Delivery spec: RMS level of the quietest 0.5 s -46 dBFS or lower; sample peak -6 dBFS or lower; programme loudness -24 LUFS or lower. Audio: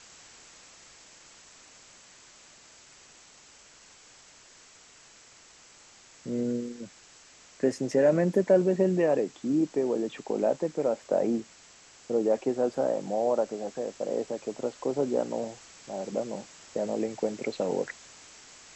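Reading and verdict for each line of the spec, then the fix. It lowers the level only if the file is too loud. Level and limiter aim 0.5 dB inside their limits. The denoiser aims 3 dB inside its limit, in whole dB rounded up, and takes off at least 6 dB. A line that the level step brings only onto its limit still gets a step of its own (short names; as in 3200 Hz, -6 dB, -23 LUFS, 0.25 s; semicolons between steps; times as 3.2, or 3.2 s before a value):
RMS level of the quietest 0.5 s -55 dBFS: OK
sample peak -11.0 dBFS: OK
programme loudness -29.0 LUFS: OK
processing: none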